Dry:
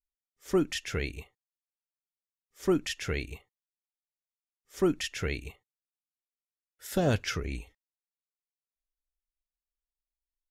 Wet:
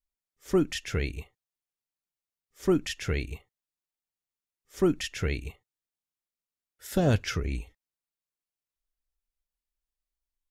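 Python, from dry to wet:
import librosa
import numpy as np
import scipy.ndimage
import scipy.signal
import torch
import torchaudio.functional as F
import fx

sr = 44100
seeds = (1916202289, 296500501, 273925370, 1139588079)

y = fx.low_shelf(x, sr, hz=240.0, db=5.5)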